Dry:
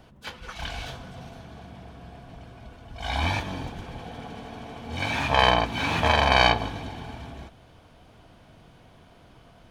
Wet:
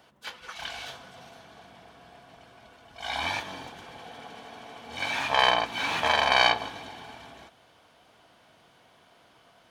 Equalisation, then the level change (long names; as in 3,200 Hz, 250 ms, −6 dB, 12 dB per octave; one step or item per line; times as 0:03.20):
high-pass filter 180 Hz 6 dB per octave
low-shelf EQ 420 Hz −11.5 dB
notch filter 2,500 Hz, Q 27
0.0 dB